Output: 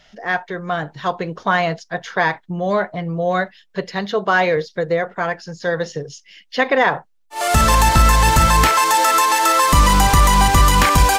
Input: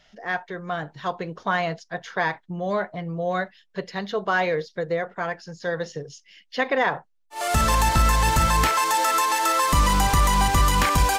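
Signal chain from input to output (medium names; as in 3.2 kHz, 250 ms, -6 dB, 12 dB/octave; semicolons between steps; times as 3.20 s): 4.06–4.57 s: high-pass 61 Hz; trim +6.5 dB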